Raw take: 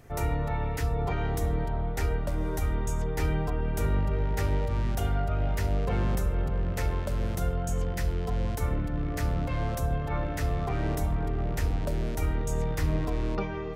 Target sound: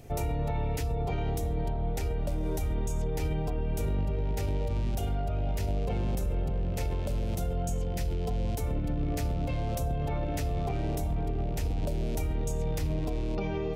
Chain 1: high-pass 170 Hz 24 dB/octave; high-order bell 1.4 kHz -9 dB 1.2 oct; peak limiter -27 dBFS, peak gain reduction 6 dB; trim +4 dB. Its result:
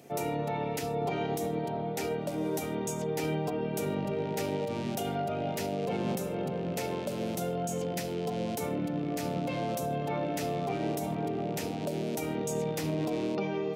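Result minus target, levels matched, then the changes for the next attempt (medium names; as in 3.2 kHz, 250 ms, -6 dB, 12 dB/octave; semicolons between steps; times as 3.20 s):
125 Hz band -5.5 dB
remove: high-pass 170 Hz 24 dB/octave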